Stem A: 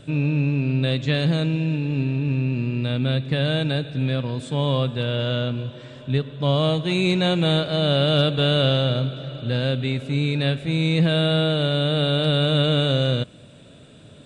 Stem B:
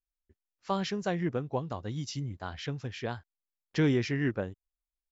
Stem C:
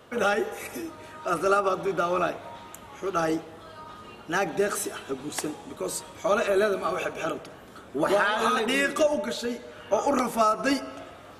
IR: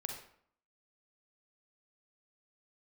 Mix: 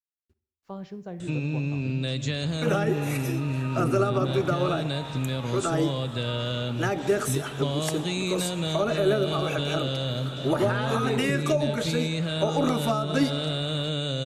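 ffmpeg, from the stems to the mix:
-filter_complex "[0:a]equalizer=f=6.9k:t=o:w=0.97:g=14.5,acompressor=threshold=-26dB:ratio=6,adelay=1200,volume=0.5dB[a];[1:a]tiltshelf=f=970:g=8,acrusher=bits=10:mix=0:aa=0.000001,volume=-14.5dB,asplit=2[b][c];[c]volume=-7dB[d];[2:a]adelay=2500,volume=2.5dB[e];[3:a]atrim=start_sample=2205[f];[d][f]afir=irnorm=-1:irlink=0[g];[a][b][e][g]amix=inputs=4:normalize=0,acrossover=split=480[h][i];[i]acompressor=threshold=-27dB:ratio=10[j];[h][j]amix=inputs=2:normalize=0"

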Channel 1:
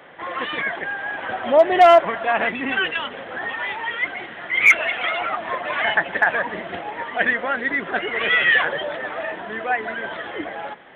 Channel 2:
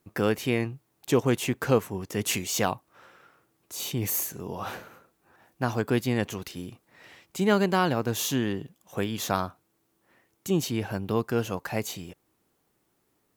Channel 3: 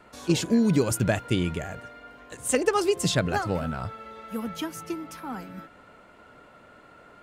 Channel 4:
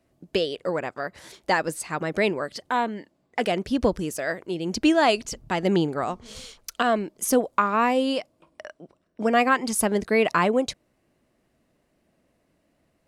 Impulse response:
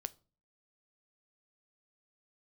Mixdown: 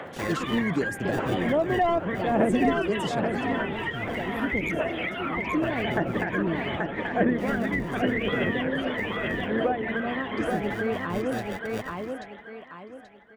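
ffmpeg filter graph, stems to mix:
-filter_complex "[0:a]aphaser=in_gain=1:out_gain=1:delay=1.1:decay=0.67:speed=0.83:type=triangular,volume=1.5dB,asplit=2[a][b];[b]volume=-6.5dB[c];[1:a]acrusher=samples=42:mix=1:aa=0.000001,volume=-7.5dB[d];[2:a]highpass=190,volume=-2.5dB,asplit=2[e][f];[f]volume=-22dB[g];[3:a]lowpass=f=1.5k:p=1,adelay=700,volume=-5.5dB,asplit=2[h][i];[i]volume=-6dB[j];[c][g][j]amix=inputs=3:normalize=0,aecho=0:1:832|1664|2496|3328|4160:1|0.32|0.102|0.0328|0.0105[k];[a][d][e][h][k]amix=inputs=5:normalize=0,acrossover=split=470[l][m];[m]acompressor=threshold=-31dB:ratio=6[n];[l][n]amix=inputs=2:normalize=0"

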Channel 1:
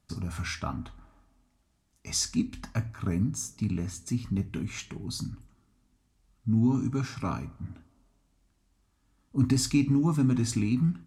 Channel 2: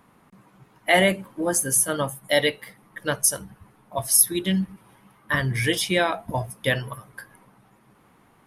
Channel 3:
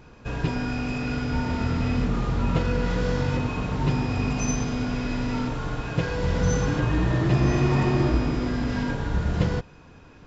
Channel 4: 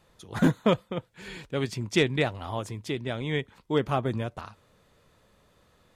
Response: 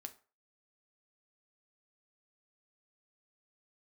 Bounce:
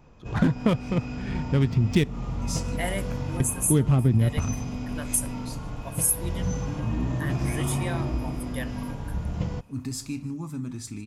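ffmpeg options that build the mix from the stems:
-filter_complex "[0:a]highshelf=f=8.7k:g=11.5,adelay=350,volume=-11dB,asplit=3[a][b][c];[b]volume=-8.5dB[d];[c]volume=-18.5dB[e];[1:a]highshelf=f=6.3k:t=q:w=3:g=6.5,adelay=1900,volume=-13dB[f];[2:a]equalizer=f=400:t=o:w=0.67:g=-7,equalizer=f=1.6k:t=o:w=0.67:g=-10,equalizer=f=4k:t=o:w=0.67:g=-7,volume=-5dB[g];[3:a]asubboost=boost=10:cutoff=230,adynamicsmooth=sensitivity=6.5:basefreq=1.3k,volume=2.5dB,asplit=3[h][i][j];[h]atrim=end=2.04,asetpts=PTS-STARTPTS,afade=t=out:st=2.036:d=0.004:c=hsin[k];[i]atrim=start=2.04:end=3.4,asetpts=PTS-STARTPTS,volume=0[l];[j]atrim=start=3.4,asetpts=PTS-STARTPTS,afade=t=in:d=0.004:c=hsin[m];[k][l][m]concat=n=3:v=0:a=1,asplit=3[n][o][p];[o]volume=-9dB[q];[p]apad=whole_len=503353[r];[a][r]sidechaincompress=threshold=-39dB:ratio=8:attack=16:release=247[s];[4:a]atrim=start_sample=2205[t];[d][q]amix=inputs=2:normalize=0[u];[u][t]afir=irnorm=-1:irlink=0[v];[e]aecho=0:1:152|304|456|608|760:1|0.34|0.116|0.0393|0.0134[w];[s][f][g][n][v][w]amix=inputs=6:normalize=0,acompressor=threshold=-18dB:ratio=4"

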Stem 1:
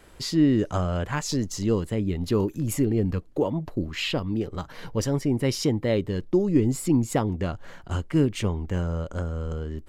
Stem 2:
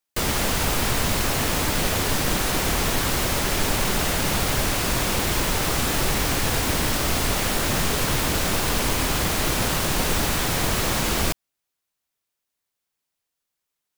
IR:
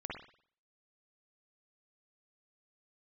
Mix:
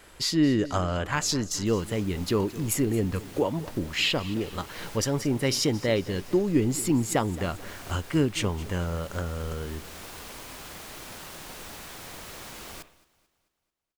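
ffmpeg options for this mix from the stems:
-filter_complex "[0:a]tiltshelf=f=710:g=-4,volume=0.5dB,asplit=3[a][b][c];[b]volume=-18dB[d];[1:a]lowshelf=f=250:g=-7.5,adelay=1500,volume=-19dB,asplit=3[e][f][g];[f]volume=-9.5dB[h];[g]volume=-20dB[i];[c]apad=whole_len=682398[j];[e][j]sidechaincompress=threshold=-34dB:ratio=8:attack=23:release=608[k];[2:a]atrim=start_sample=2205[l];[h][l]afir=irnorm=-1:irlink=0[m];[d][i]amix=inputs=2:normalize=0,aecho=0:1:220|440|660|880|1100|1320|1540:1|0.47|0.221|0.104|0.0488|0.0229|0.0108[n];[a][k][m][n]amix=inputs=4:normalize=0"

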